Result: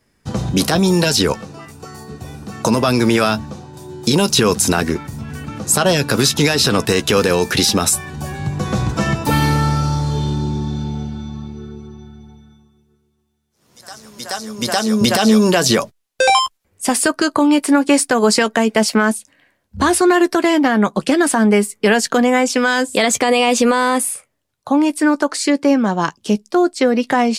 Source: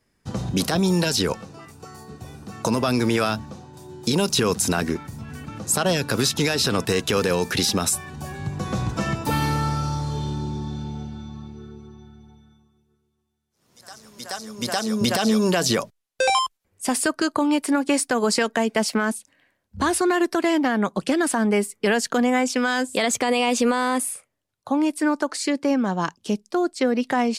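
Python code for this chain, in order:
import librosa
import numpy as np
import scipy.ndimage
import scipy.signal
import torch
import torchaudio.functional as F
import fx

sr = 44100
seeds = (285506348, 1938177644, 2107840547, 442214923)

y = fx.doubler(x, sr, ms=14.0, db=-13)
y = y * 10.0 ** (6.5 / 20.0)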